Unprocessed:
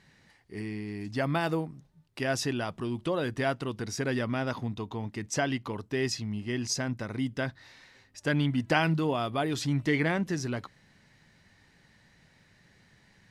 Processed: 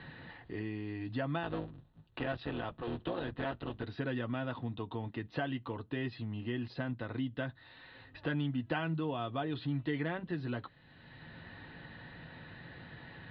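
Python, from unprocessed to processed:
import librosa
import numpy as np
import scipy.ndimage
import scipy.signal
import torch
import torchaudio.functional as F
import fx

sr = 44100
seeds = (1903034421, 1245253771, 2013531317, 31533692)

y = fx.cycle_switch(x, sr, every=3, mode='muted', at=(1.43, 3.83))
y = scipy.signal.sosfilt(scipy.signal.butter(12, 4100.0, 'lowpass', fs=sr, output='sos'), y)
y = fx.notch(y, sr, hz=2200.0, q=5.8)
y = fx.notch_comb(y, sr, f0_hz=200.0)
y = fx.band_squash(y, sr, depth_pct=70)
y = y * 10.0 ** (-5.5 / 20.0)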